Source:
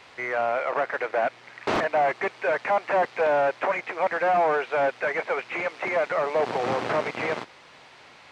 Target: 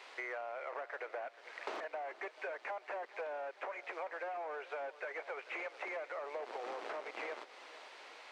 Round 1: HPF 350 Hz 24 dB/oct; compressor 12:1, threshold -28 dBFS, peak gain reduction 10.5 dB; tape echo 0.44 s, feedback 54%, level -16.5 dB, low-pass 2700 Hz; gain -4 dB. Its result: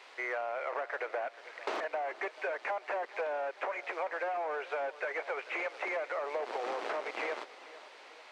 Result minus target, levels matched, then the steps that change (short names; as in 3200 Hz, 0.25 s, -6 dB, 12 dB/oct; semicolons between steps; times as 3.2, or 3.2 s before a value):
compressor: peak gain reduction -7 dB
change: compressor 12:1, threshold -35.5 dBFS, peak gain reduction 17 dB